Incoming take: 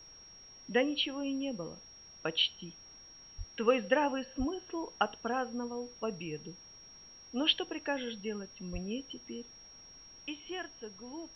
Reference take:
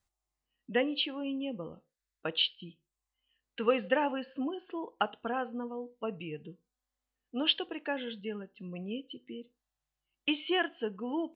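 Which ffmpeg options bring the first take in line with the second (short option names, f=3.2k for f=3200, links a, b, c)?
-filter_complex "[0:a]bandreject=f=5.6k:w=30,asplit=3[a][b][c];[a]afade=t=out:st=3.37:d=0.02[d];[b]highpass=f=140:w=0.5412,highpass=f=140:w=1.3066,afade=t=in:st=3.37:d=0.02,afade=t=out:st=3.49:d=0.02[e];[c]afade=t=in:st=3.49:d=0.02[f];[d][e][f]amix=inputs=3:normalize=0,asplit=3[g][h][i];[g]afade=t=out:st=4.38:d=0.02[j];[h]highpass=f=140:w=0.5412,highpass=f=140:w=1.3066,afade=t=in:st=4.38:d=0.02,afade=t=out:st=4.5:d=0.02[k];[i]afade=t=in:st=4.5:d=0.02[l];[j][k][l]amix=inputs=3:normalize=0,asplit=3[m][n][o];[m]afade=t=out:st=8.72:d=0.02[p];[n]highpass=f=140:w=0.5412,highpass=f=140:w=1.3066,afade=t=in:st=8.72:d=0.02,afade=t=out:st=8.84:d=0.02[q];[o]afade=t=in:st=8.84:d=0.02[r];[p][q][r]amix=inputs=3:normalize=0,agate=range=-21dB:threshold=-46dB,asetnsamples=n=441:p=0,asendcmd='10.26 volume volume 11dB',volume=0dB"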